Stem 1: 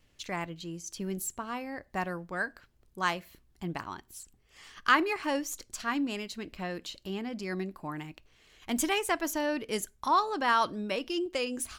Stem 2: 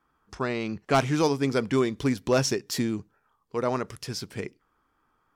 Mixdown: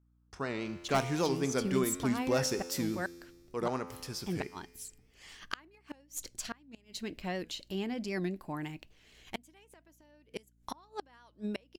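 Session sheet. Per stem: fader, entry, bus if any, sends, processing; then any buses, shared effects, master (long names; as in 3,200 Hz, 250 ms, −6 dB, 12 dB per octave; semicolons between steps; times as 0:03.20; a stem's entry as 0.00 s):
+0.5 dB, 0.65 s, no send, parametric band 1,200 Hz −6 dB 0.62 octaves; gate with flip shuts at −24 dBFS, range −32 dB
+2.0 dB, 0.00 s, no send, noise gate −50 dBFS, range −17 dB; high-shelf EQ 12,000 Hz +11.5 dB; tuned comb filter 86 Hz, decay 1.5 s, harmonics all, mix 70%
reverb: not used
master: mains hum 60 Hz, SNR 32 dB; wow of a warped record 78 rpm, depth 100 cents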